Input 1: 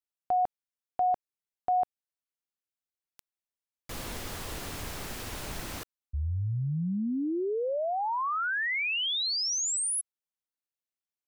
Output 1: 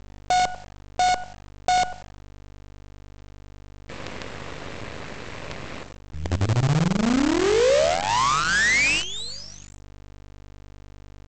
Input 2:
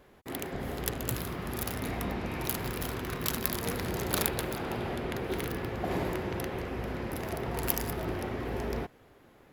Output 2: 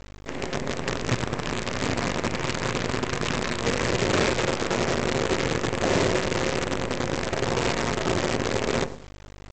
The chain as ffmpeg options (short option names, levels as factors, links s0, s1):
-filter_complex "[0:a]highpass=110,equalizer=f=200:t=q:w=4:g=-5,equalizer=f=340:t=q:w=4:g=-4,equalizer=f=540:t=q:w=4:g=3,equalizer=f=790:t=q:w=4:g=-8,equalizer=f=1400:t=q:w=4:g=-5,equalizer=f=3200:t=q:w=4:g=-7,lowpass=f=3400:w=0.5412,lowpass=f=3400:w=1.3066,aeval=exprs='val(0)+0.00316*(sin(2*PI*50*n/s)+sin(2*PI*2*50*n/s)/2+sin(2*PI*3*50*n/s)/3+sin(2*PI*4*50*n/s)/4+sin(2*PI*5*50*n/s)/5)':c=same,asplit=2[s0][s1];[s1]adelay=94,lowpass=f=1500:p=1,volume=0.447,asplit=2[s2][s3];[s3]adelay=94,lowpass=f=1500:p=1,volume=0.32,asplit=2[s4][s5];[s5]adelay=94,lowpass=f=1500:p=1,volume=0.32,asplit=2[s6][s7];[s7]adelay=94,lowpass=f=1500:p=1,volume=0.32[s8];[s0][s2][s4][s6][s8]amix=inputs=5:normalize=0,acontrast=89,aresample=16000,acrusher=bits=5:dc=4:mix=0:aa=0.000001,aresample=44100,volume=1.41"